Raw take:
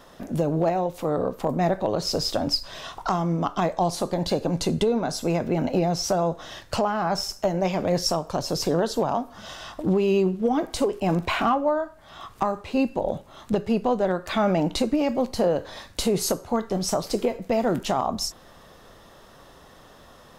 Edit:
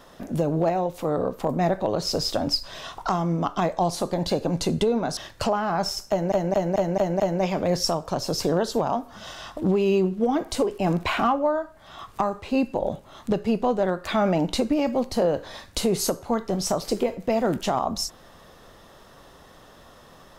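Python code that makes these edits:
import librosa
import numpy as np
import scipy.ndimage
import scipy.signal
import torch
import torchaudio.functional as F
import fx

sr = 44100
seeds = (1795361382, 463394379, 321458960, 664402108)

y = fx.edit(x, sr, fx.cut(start_s=5.17, length_s=1.32),
    fx.stutter(start_s=7.42, slice_s=0.22, count=6), tone=tone)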